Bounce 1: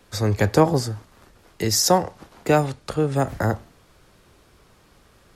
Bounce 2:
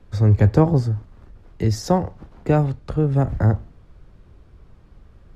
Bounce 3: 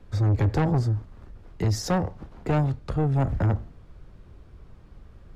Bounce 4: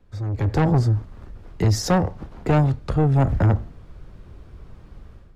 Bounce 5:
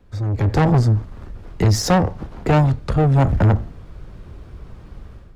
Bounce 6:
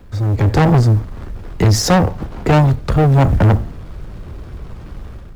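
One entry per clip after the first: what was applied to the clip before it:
RIAA curve playback; trim -4.5 dB
saturation -18 dBFS, distortion -8 dB
level rider gain up to 12.5 dB; trim -7 dB
single-diode clipper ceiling -19 dBFS; trim +5.5 dB
companding laws mixed up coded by mu; in parallel at -3 dB: overload inside the chain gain 16 dB

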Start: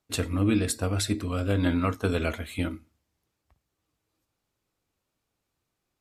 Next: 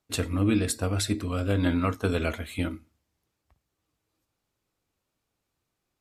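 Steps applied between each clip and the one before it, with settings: no audible change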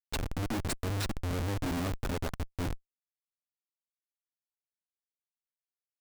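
random holes in the spectrogram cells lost 23%; Schmitt trigger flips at -28.5 dBFS

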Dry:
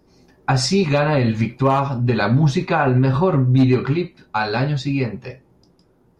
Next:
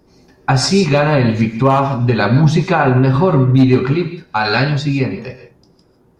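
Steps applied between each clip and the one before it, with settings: gated-style reverb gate 180 ms rising, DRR 9 dB; time-frequency box 4.45–4.70 s, 1.3–8 kHz +6 dB; trim +4 dB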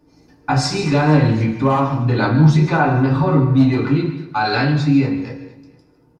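feedback delay 233 ms, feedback 37%, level -17 dB; FDN reverb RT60 0.35 s, low-frequency decay 1.25×, high-frequency decay 0.6×, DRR -2.5 dB; trim -8 dB

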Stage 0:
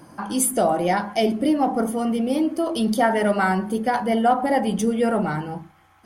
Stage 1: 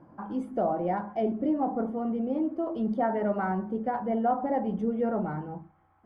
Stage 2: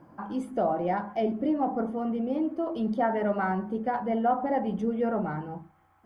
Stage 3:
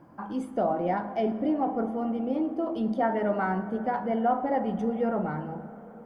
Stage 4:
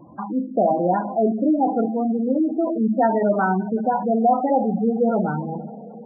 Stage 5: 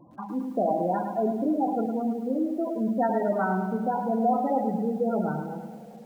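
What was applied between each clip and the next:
low-pass 1.1 kHz 12 dB/octave; trim -7 dB
treble shelf 2.1 kHz +10.5 dB
reverberation RT60 4.3 s, pre-delay 4 ms, DRR 12.5 dB
spectral gate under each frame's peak -15 dB strong; trim +8 dB
bit-crushed delay 107 ms, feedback 55%, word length 8-bit, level -7.5 dB; trim -7 dB

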